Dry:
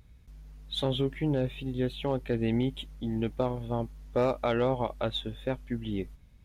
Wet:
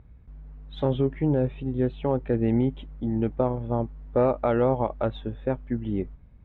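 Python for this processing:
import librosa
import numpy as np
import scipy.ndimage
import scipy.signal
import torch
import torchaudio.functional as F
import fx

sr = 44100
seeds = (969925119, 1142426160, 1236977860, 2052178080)

y = scipy.signal.sosfilt(scipy.signal.butter(2, 1400.0, 'lowpass', fs=sr, output='sos'), x)
y = F.gain(torch.from_numpy(y), 5.0).numpy()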